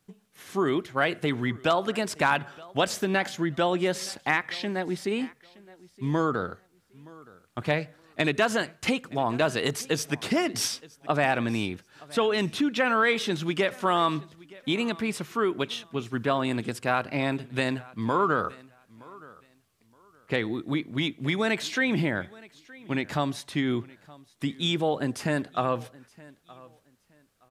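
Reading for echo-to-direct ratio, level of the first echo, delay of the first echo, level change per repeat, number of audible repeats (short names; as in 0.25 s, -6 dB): -22.5 dB, -22.5 dB, 0.92 s, -12.5 dB, 2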